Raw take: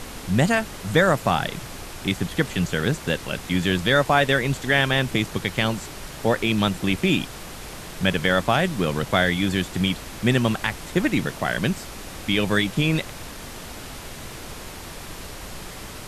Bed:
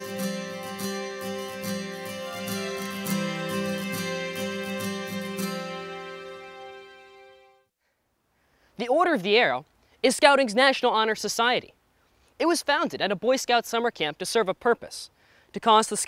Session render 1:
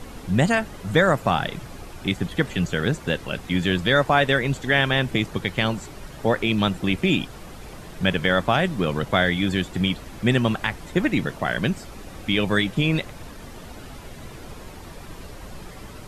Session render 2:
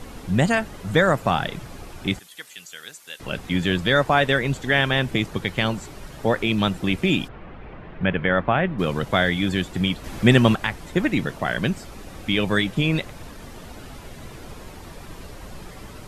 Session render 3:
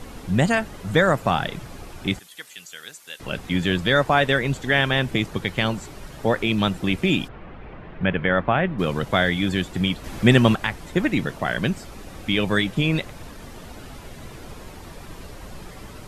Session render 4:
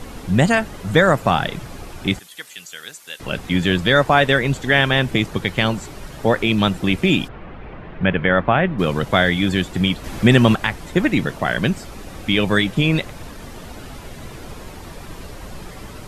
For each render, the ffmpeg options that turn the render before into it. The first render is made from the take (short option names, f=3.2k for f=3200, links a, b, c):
-af "afftdn=nr=9:nf=-38"
-filter_complex "[0:a]asettb=1/sr,asplit=3[a][b][c];[a]atrim=end=2.194[d];[b]atrim=start=2.19:end=3.2,asetpts=PTS-STARTPTS,afade=t=in:d=0.004:c=qsin,afade=t=out:st=1.006:d=0.004:c=qsin,aderivative[e];[c]atrim=start=3.196[f];[d][e]acrossfade=d=0.004:c1=hsin:c2=qsin[g];[g][f]acrossfade=d=0.004:c1=qsin:c2=hsin,asplit=3[h][i][j];[h]afade=t=out:st=7.27:d=0.02[k];[i]lowpass=f=2.6k:w=0.5412,lowpass=f=2.6k:w=1.3066,afade=t=in:st=7.27:d=0.02,afade=t=out:st=8.78:d=0.02[l];[j]afade=t=in:st=8.78:d=0.02[m];[k][l][m]amix=inputs=3:normalize=0,asplit=3[n][o][p];[n]atrim=end=10.042[q];[o]atrim=start=10.038:end=10.552,asetpts=PTS-STARTPTS,volume=5dB[r];[p]atrim=start=10.548[s];[q][r]acrossfade=d=0.004:c1=hsin:c2=hsin[t];[t][s]acrossfade=d=0.004:c1=hsin:c2=hsin"
-af anull
-af "volume=4dB,alimiter=limit=-2dB:level=0:latency=1"